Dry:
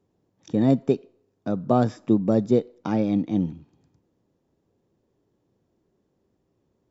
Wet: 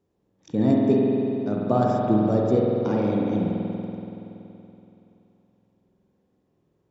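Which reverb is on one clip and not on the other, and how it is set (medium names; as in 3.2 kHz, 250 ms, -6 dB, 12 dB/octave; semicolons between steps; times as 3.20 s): spring tank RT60 3.2 s, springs 47 ms, chirp 25 ms, DRR -3 dB; trim -3 dB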